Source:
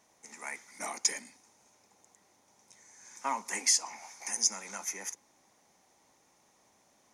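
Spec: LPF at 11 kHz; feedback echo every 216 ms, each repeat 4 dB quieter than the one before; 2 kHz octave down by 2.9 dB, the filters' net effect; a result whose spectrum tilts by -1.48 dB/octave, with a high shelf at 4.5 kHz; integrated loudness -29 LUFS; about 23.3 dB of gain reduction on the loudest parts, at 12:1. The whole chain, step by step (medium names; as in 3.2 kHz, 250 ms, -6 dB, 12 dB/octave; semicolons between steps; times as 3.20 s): low-pass 11 kHz; peaking EQ 2 kHz -4.5 dB; treble shelf 4.5 kHz +7 dB; compression 12:1, threshold -42 dBFS; feedback delay 216 ms, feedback 63%, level -4 dB; trim +16 dB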